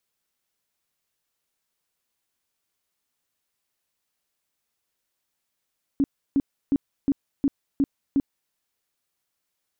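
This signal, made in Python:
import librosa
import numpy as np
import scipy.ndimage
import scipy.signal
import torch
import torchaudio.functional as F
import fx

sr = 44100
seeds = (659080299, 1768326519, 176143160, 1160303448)

y = fx.tone_burst(sr, hz=278.0, cycles=11, every_s=0.36, bursts=7, level_db=-16.5)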